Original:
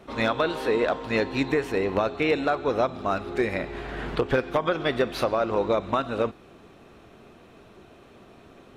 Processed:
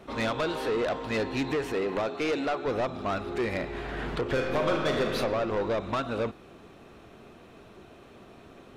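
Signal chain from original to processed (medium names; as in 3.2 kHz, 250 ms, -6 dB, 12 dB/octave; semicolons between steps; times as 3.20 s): 1.73–2.66 s: high-pass 170 Hz 12 dB/octave; saturation -23.5 dBFS, distortion -10 dB; 4.21–5.09 s: reverb throw, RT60 1.7 s, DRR 0.5 dB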